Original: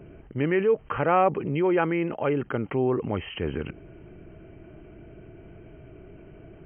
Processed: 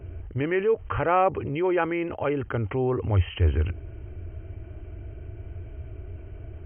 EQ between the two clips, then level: resonant low shelf 120 Hz +10 dB, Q 3; 0.0 dB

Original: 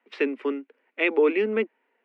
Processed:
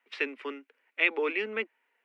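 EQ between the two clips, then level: tilt shelf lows -8.5 dB, about 740 Hz; -6.5 dB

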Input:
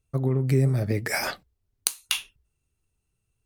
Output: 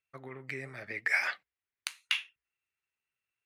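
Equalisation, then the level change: band-pass 2000 Hz, Q 2.4; +3.5 dB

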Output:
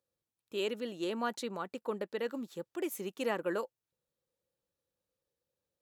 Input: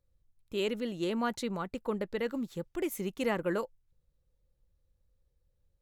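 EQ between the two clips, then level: HPF 270 Hz 12 dB/oct; notch 2100 Hz, Q 12; -1.5 dB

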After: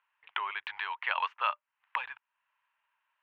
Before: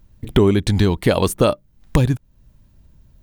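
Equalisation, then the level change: elliptic band-pass 940–2800 Hz, stop band 60 dB; -3.0 dB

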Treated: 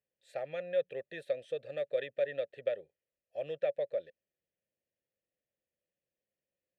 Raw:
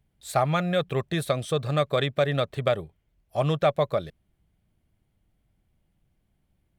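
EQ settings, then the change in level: vowel filter e; high shelf 4800 Hz +5.5 dB; -3.0 dB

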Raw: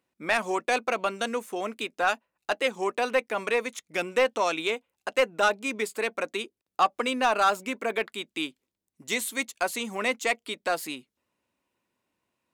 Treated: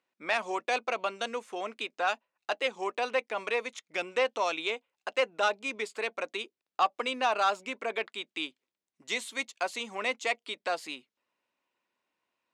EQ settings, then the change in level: HPF 780 Hz 6 dB/oct; dynamic EQ 1600 Hz, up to -5 dB, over -42 dBFS, Q 1.4; air absorption 94 m; +1.0 dB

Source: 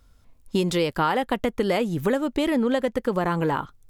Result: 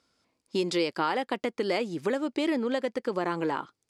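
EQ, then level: speaker cabinet 240–9800 Hz, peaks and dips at 340 Hz +5 dB, 2300 Hz +4 dB, 4800 Hz +9 dB; -5.5 dB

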